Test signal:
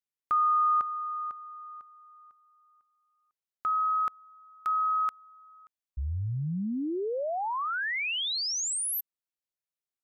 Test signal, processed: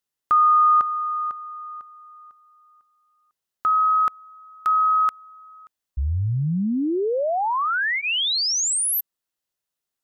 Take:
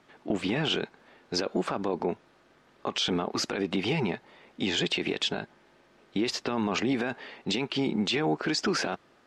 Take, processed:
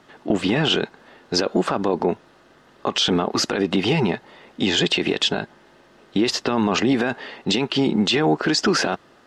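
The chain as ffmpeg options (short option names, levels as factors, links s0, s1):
-af "bandreject=f=2300:w=9.5,volume=2.66"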